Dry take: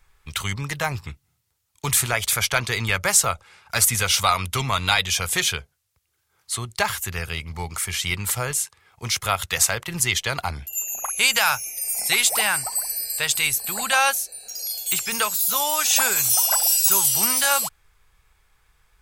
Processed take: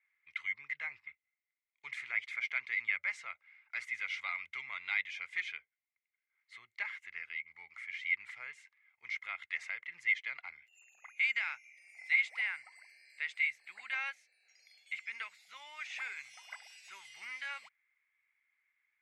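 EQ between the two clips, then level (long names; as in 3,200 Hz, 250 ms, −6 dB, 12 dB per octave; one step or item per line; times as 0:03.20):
resonant band-pass 2,100 Hz, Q 14
high-frequency loss of the air 82 metres
0.0 dB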